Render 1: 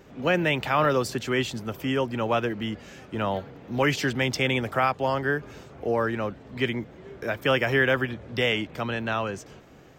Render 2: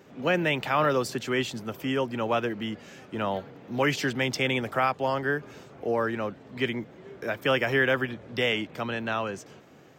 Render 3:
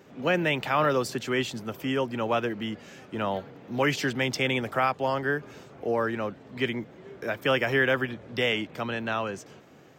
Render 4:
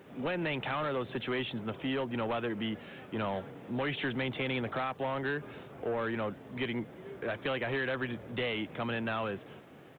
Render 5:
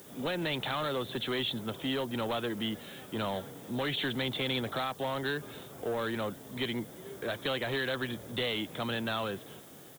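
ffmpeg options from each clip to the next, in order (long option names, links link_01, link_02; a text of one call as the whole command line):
ffmpeg -i in.wav -af "highpass=120,volume=-1.5dB" out.wav
ffmpeg -i in.wav -af anull out.wav
ffmpeg -i in.wav -af "acompressor=threshold=-25dB:ratio=12,aresample=8000,asoftclip=type=tanh:threshold=-27.5dB,aresample=44100,acrusher=bits=11:mix=0:aa=0.000001" out.wav
ffmpeg -i in.wav -af "aexciter=amount=7.5:drive=6.7:freq=3800" out.wav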